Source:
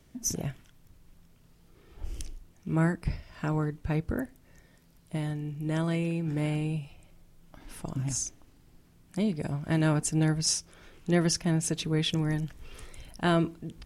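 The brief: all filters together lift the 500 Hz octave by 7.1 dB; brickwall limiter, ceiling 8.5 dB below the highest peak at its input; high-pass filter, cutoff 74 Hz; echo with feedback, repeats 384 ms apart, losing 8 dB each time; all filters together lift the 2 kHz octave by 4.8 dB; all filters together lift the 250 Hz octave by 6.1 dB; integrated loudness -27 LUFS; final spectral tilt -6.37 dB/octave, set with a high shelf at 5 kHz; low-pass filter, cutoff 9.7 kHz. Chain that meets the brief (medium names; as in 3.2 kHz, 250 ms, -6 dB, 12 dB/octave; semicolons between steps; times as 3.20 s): high-pass 74 Hz; low-pass 9.7 kHz; peaking EQ 250 Hz +7.5 dB; peaking EQ 500 Hz +6.5 dB; peaking EQ 2 kHz +6 dB; treble shelf 5 kHz -3.5 dB; peak limiter -15.5 dBFS; feedback delay 384 ms, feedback 40%, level -8 dB; trim +0.5 dB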